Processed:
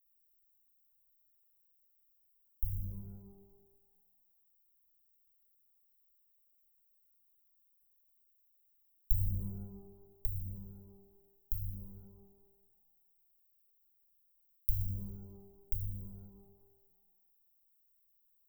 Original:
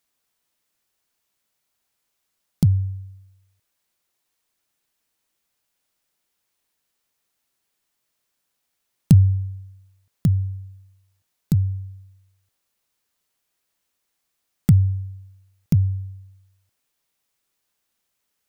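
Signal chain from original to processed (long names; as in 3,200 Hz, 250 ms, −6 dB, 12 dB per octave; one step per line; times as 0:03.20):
inverse Chebyshev band-stop filter 240–4,600 Hz, stop band 80 dB
reverb with rising layers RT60 1.2 s, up +12 semitones, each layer −8 dB, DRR 1.5 dB
level +7 dB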